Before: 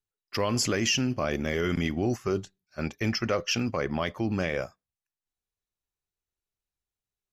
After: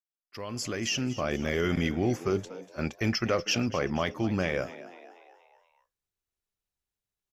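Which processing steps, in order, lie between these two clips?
opening faded in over 1.53 s; frequency-shifting echo 0.24 s, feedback 51%, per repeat +83 Hz, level -16 dB

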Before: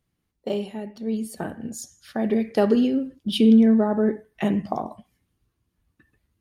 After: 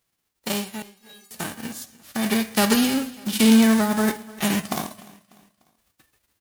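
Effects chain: spectral whitening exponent 0.3; 0.82–1.31 metallic resonator 390 Hz, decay 0.37 s, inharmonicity 0.008; feedback echo 0.297 s, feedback 42%, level -21 dB

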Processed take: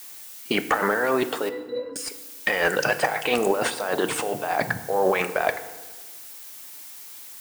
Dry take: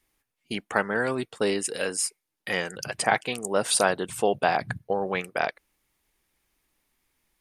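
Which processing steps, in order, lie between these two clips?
HPF 240 Hz 6 dB/oct; negative-ratio compressor -34 dBFS, ratio -1; overdrive pedal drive 17 dB, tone 1100 Hz, clips at -9 dBFS; added noise blue -48 dBFS; 1.49–1.96 octave resonator B, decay 0.2 s; FDN reverb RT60 1.3 s, low-frequency decay 1.25×, high-frequency decay 0.65×, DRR 10 dB; gain +6 dB

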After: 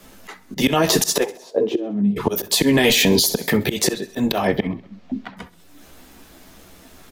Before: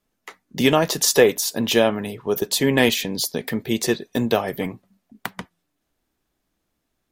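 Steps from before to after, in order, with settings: chorus voices 6, 0.78 Hz, delay 13 ms, depth 2.4 ms; auto swell 0.459 s; 1.23–2.16 band-pass 930 Hz -> 170 Hz, Q 6.9; 4.47–5.37 air absorption 200 m; feedback echo 65 ms, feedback 50%, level -20.5 dB; on a send at -23 dB: reverb RT60 0.35 s, pre-delay 9 ms; on the sum: maximiser +25 dB; three-band squash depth 40%; gain -4.5 dB

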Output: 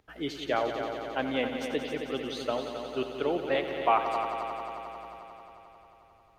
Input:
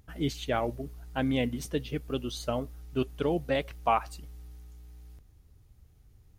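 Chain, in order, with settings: three-band isolator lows -16 dB, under 310 Hz, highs -13 dB, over 4600 Hz; multi-head echo 89 ms, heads all three, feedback 73%, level -12 dB; gain +1.5 dB

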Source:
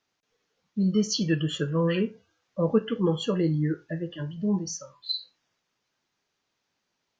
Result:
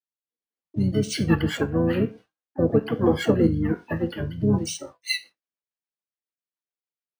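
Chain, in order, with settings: expander -41 dBFS; HPF 340 Hz 6 dB/oct; harmoniser -12 st -6 dB, -7 st -6 dB, +7 st -14 dB; in parallel at -1 dB: vocal rider 2 s; on the sum: rotary speaker horn 1.2 Hz, later 7 Hz, at 4.39; dynamic EQ 3300 Hz, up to -7 dB, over -43 dBFS, Q 1.1; decimation joined by straight lines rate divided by 3×; gain +3 dB

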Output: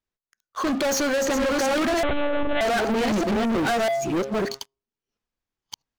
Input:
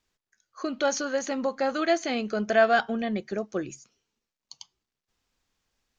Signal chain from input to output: reverse delay 0.647 s, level -2 dB; high shelf 2400 Hz -7.5 dB; de-hum 135.5 Hz, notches 9; limiter -20 dBFS, peak gain reduction 11 dB; sample leveller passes 5; 2.03–2.61 monotone LPC vocoder at 8 kHz 290 Hz

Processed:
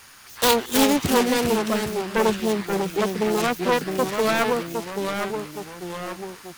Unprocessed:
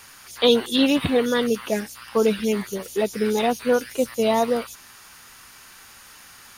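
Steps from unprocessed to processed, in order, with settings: self-modulated delay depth 0.92 ms; echoes that change speed 0.27 s, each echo -2 st, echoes 3, each echo -6 dB

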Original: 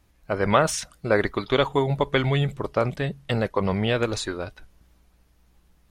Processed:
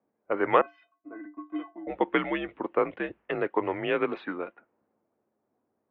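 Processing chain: 0.61–1.87 metallic resonator 380 Hz, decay 0.25 s, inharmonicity 0.008; low-pass opened by the level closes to 660 Hz, open at -21 dBFS; mistuned SSB -82 Hz 340–2800 Hz; gain -1.5 dB

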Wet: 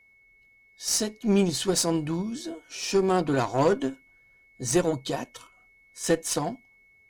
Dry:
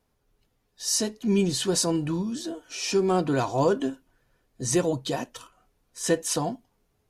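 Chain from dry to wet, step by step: added harmonics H 4 -23 dB, 5 -27 dB, 7 -23 dB, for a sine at -10.5 dBFS; whine 2200 Hz -57 dBFS

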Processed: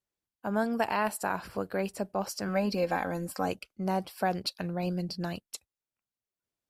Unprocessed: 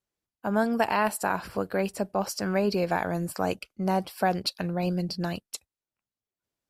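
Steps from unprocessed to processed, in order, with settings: 2.48–3.48 comb 3.8 ms, depth 62%; gain -4 dB

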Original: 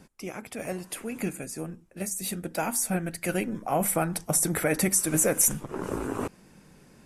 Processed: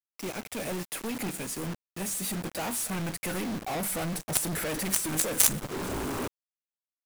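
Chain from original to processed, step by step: in parallel at -9 dB: wrapped overs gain 25 dB; on the sum: companded quantiser 2-bit; upward expander 1.5:1, over -39 dBFS; gain -1.5 dB

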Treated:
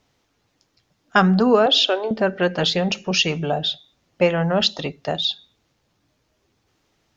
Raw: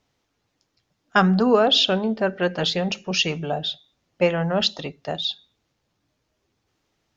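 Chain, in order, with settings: 1.66–2.11 elliptic high-pass 290 Hz, stop band 40 dB; in parallel at -1 dB: compressor, threshold -27 dBFS, peak gain reduction 14.5 dB

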